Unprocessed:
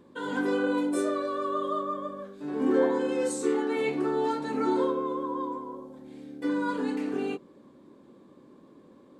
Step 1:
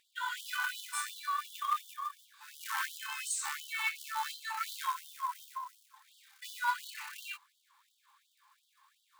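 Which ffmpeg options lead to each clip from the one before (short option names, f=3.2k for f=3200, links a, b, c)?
-af "acrusher=bits=6:mode=log:mix=0:aa=0.000001,aeval=exprs='0.224*(cos(1*acos(clip(val(0)/0.224,-1,1)))-cos(1*PI/2))+0.0398*(cos(2*acos(clip(val(0)/0.224,-1,1)))-cos(2*PI/2))+0.00501*(cos(7*acos(clip(val(0)/0.224,-1,1)))-cos(7*PI/2))+0.00631*(cos(8*acos(clip(val(0)/0.224,-1,1)))-cos(8*PI/2))':c=same,afftfilt=real='re*gte(b*sr/1024,780*pow(3000/780,0.5+0.5*sin(2*PI*2.8*pts/sr)))':imag='im*gte(b*sr/1024,780*pow(3000/780,0.5+0.5*sin(2*PI*2.8*pts/sr)))':win_size=1024:overlap=0.75,volume=3.5dB"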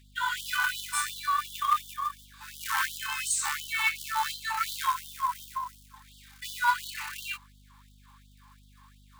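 -af "aeval=exprs='val(0)+0.000708*(sin(2*PI*50*n/s)+sin(2*PI*2*50*n/s)/2+sin(2*PI*3*50*n/s)/3+sin(2*PI*4*50*n/s)/4+sin(2*PI*5*50*n/s)/5)':c=same,volume=7dB"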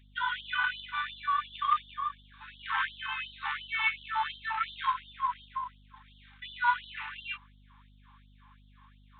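-af "aresample=8000,aresample=44100,volume=-1.5dB"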